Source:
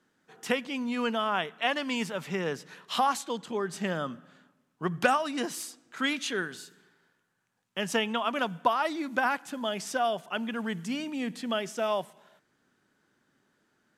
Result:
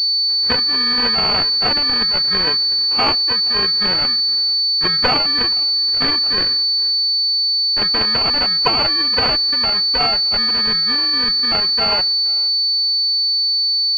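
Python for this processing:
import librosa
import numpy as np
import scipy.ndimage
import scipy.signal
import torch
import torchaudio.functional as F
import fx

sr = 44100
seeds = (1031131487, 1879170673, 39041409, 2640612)

p1 = fx.echo_feedback(x, sr, ms=472, feedback_pct=18, wet_db=-22.0)
p2 = (np.kron(scipy.signal.resample_poly(p1, 1, 8), np.eye(8)[0]) * 8)[:len(p1)]
p3 = fx.schmitt(p2, sr, flips_db=-7.5)
p4 = p2 + (p3 * 10.0 ** (-9.5 / 20.0))
y = fx.pwm(p4, sr, carrier_hz=4500.0)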